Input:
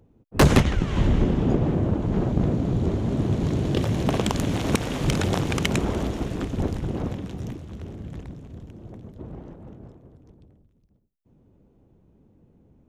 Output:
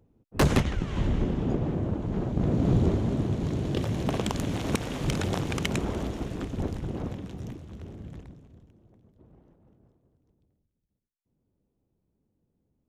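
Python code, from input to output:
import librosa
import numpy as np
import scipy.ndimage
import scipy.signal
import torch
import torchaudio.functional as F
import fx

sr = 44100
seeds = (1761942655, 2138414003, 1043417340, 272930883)

y = fx.gain(x, sr, db=fx.line((2.32, -6.0), (2.71, 2.0), (3.34, -5.0), (8.09, -5.0), (8.88, -18.0)))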